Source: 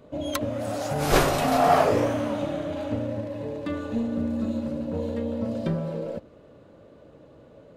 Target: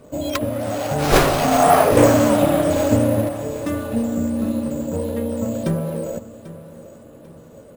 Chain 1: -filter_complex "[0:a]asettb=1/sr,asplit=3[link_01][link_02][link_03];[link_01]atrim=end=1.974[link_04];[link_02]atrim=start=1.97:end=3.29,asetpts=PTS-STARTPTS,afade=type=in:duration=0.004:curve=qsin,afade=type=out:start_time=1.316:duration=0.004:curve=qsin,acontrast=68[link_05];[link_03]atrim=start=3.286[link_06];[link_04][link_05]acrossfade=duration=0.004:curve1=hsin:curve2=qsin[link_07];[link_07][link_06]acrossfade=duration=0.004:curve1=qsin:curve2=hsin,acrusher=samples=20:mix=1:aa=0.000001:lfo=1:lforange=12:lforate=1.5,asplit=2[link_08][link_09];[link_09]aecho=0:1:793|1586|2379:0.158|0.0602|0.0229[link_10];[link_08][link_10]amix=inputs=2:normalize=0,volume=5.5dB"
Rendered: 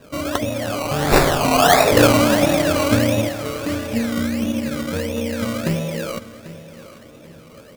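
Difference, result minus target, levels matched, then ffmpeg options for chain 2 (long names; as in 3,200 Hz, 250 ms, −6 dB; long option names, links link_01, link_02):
sample-and-hold swept by an LFO: distortion +12 dB
-filter_complex "[0:a]asettb=1/sr,asplit=3[link_01][link_02][link_03];[link_01]atrim=end=1.974[link_04];[link_02]atrim=start=1.97:end=3.29,asetpts=PTS-STARTPTS,afade=type=in:duration=0.004:curve=qsin,afade=type=out:start_time=1.316:duration=0.004:curve=qsin,acontrast=68[link_05];[link_03]atrim=start=3.286[link_06];[link_04][link_05]acrossfade=duration=0.004:curve1=hsin:curve2=qsin[link_07];[link_07][link_06]acrossfade=duration=0.004:curve1=qsin:curve2=hsin,acrusher=samples=5:mix=1:aa=0.000001:lfo=1:lforange=3:lforate=1.5,asplit=2[link_08][link_09];[link_09]aecho=0:1:793|1586|2379:0.158|0.0602|0.0229[link_10];[link_08][link_10]amix=inputs=2:normalize=0,volume=5.5dB"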